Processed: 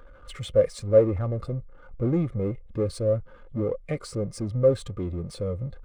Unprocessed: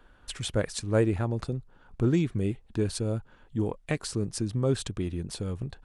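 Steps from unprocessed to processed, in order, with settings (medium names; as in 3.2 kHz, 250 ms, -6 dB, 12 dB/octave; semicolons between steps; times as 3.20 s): power-law waveshaper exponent 0.5; small resonant body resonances 530/1200/2100 Hz, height 11 dB, ringing for 35 ms; spectral contrast expander 1.5:1; trim -1.5 dB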